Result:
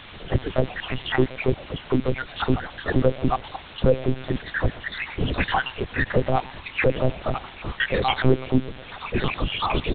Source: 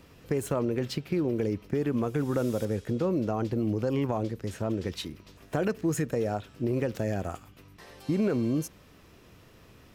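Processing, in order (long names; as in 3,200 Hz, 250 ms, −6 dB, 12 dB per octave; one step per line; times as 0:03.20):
time-frequency cells dropped at random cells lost 76%
camcorder AGC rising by 44 dB per second
leveller curve on the samples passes 2
tuned comb filter 130 Hz, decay 0.87 s, harmonics all, mix 40%
all-pass dispersion lows, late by 51 ms, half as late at 510 Hz
in parallel at −4.5 dB: bit-depth reduction 6 bits, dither triangular
on the sum: echo with shifted repeats 119 ms, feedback 46%, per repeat +140 Hz, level −21.5 dB
one-pitch LPC vocoder at 8 kHz 130 Hz
level +5 dB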